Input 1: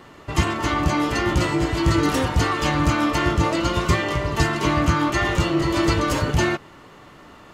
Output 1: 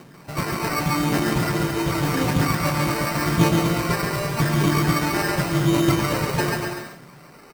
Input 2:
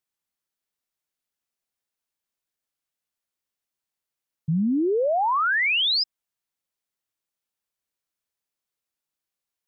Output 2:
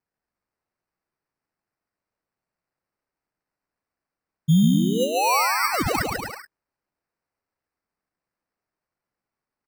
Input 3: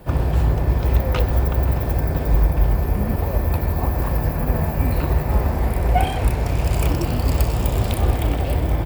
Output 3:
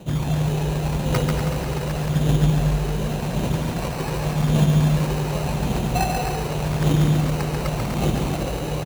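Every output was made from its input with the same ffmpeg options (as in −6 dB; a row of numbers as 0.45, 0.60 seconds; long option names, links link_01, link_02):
-filter_complex "[0:a]lowshelf=frequency=110:width_type=q:width=3:gain=-9.5,aphaser=in_gain=1:out_gain=1:delay=2.6:decay=0.56:speed=0.87:type=triangular,acrusher=samples=13:mix=1:aa=0.000001,asplit=2[link_01][link_02];[link_02]aecho=0:1:140|245|323.8|382.8|427.1:0.631|0.398|0.251|0.158|0.1[link_03];[link_01][link_03]amix=inputs=2:normalize=0,volume=-5dB"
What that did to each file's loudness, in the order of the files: −0.5, +1.0, −1.5 LU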